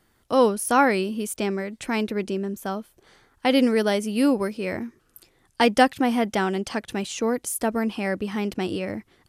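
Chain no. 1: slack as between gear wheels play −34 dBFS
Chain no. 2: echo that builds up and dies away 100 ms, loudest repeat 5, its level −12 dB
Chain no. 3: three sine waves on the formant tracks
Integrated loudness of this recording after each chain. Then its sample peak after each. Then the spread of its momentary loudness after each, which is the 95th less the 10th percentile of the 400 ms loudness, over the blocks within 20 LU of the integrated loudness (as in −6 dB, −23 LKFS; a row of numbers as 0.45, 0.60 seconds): −24.0, −22.5, −24.0 LKFS; −5.0, −4.5, −4.5 dBFS; 11, 8, 13 LU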